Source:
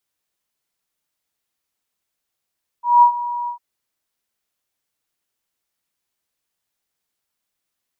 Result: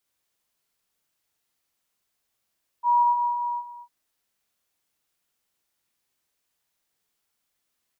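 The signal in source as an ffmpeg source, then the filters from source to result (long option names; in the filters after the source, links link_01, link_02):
-f lavfi -i "aevalsrc='0.531*sin(2*PI*962*t)':duration=0.752:sample_rate=44100,afade=type=in:duration=0.191,afade=type=out:start_time=0.191:duration=0.094:silence=0.158,afade=type=out:start_time=0.65:duration=0.102"
-filter_complex "[0:a]asplit=2[link_01][link_02];[link_02]aecho=0:1:43|67:0.447|0.447[link_03];[link_01][link_03]amix=inputs=2:normalize=0,acompressor=threshold=-18dB:ratio=6,asplit=2[link_04][link_05];[link_05]aecho=0:1:235:0.266[link_06];[link_04][link_06]amix=inputs=2:normalize=0"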